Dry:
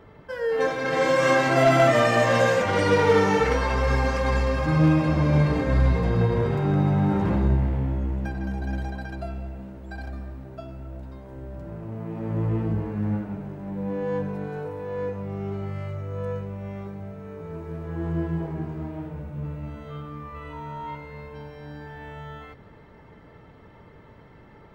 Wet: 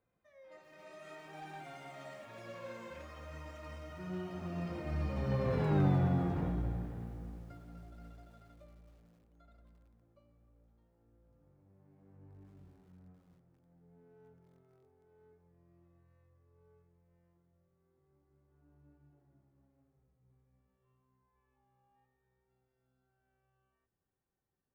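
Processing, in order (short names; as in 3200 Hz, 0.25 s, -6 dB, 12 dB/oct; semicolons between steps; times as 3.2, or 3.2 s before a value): Doppler pass-by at 5.78, 50 m/s, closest 15 m; lo-fi delay 0.266 s, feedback 55%, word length 9-bit, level -13 dB; gain -6.5 dB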